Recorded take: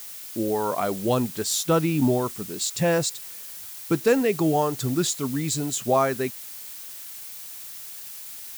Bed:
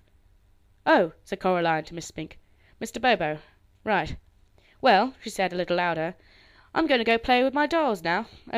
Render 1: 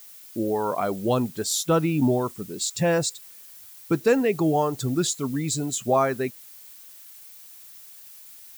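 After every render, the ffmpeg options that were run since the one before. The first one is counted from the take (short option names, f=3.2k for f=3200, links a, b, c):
-af "afftdn=nr=9:nf=-39"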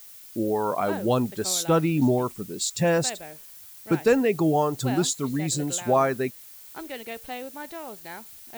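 -filter_complex "[1:a]volume=-15dB[a];[0:a][a]amix=inputs=2:normalize=0"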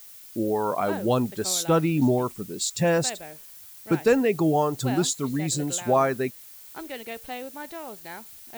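-af anull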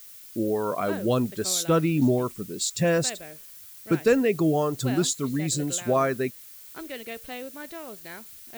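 -af "equalizer=f=840:t=o:w=0.31:g=-11"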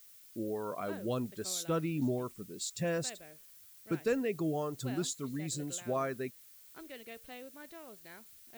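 -af "volume=-11dB"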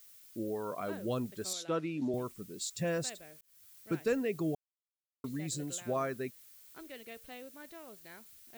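-filter_complex "[0:a]asettb=1/sr,asplit=3[a][b][c];[a]atrim=end=1.534[d];[b]atrim=start=1.53:end=2.14,asetpts=PTS-STARTPTS,afade=t=in:d=0.004:c=qsin,afade=t=out:st=0.606:d=0.004:c=qsin,highpass=220,lowpass=5.6k[e];[c]atrim=start=2.136[f];[d][e]acrossfade=d=0.004:c1=hsin:c2=qsin[g];[g][f]acrossfade=d=0.004:c1=qsin:c2=hsin,asplit=4[h][i][j][k];[h]atrim=end=3.41,asetpts=PTS-STARTPTS,afade=t=out:st=3.406:d=0.004:c=hsin[l];[i]atrim=start=3.41:end=4.55,asetpts=PTS-STARTPTS,afade=t=in:d=0.4:c=qsin,afade=t=out:st=1.136:d=0.004:c=hsin[m];[j]atrim=start=4.55:end=5.24,asetpts=PTS-STARTPTS,volume=0[n];[k]atrim=start=5.24,asetpts=PTS-STARTPTS,afade=t=in:d=0.004:c=hsin[o];[l][m][n][o]concat=n=4:v=0:a=1"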